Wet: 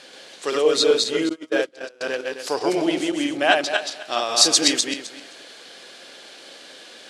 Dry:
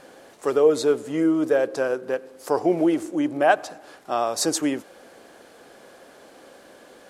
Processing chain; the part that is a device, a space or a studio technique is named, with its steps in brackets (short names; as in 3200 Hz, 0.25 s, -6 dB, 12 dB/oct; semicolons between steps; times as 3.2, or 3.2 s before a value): regenerating reverse delay 0.13 s, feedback 41%, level -1.5 dB; weighting filter D; 1.29–2.01 gate -17 dBFS, range -27 dB; LPF 11000 Hz 24 dB/oct; presence and air boost (bell 4100 Hz +5.5 dB 1 oct; high shelf 11000 Hz +5 dB); gain -2.5 dB